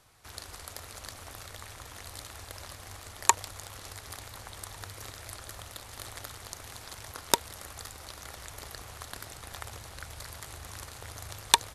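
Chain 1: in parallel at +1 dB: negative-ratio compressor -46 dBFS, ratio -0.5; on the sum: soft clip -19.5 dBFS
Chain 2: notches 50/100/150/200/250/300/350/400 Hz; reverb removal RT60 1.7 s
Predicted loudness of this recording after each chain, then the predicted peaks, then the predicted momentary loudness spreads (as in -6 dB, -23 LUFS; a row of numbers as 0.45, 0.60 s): -36.0, -36.5 LUFS; -19.5, -2.0 dBFS; 3, 20 LU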